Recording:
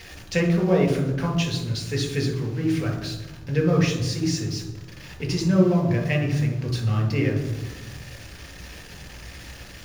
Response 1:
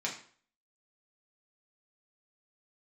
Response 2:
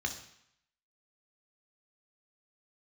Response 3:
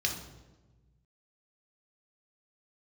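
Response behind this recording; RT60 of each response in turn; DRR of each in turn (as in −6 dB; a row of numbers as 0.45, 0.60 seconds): 3; 0.50, 0.70, 1.2 seconds; −3.5, 3.5, 1.0 decibels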